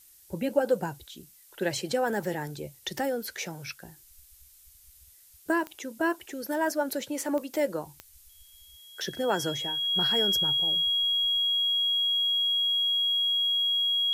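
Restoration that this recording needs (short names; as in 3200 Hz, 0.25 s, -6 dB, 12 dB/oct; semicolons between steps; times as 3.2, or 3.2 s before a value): de-click; notch 3300 Hz, Q 30; noise print and reduce 19 dB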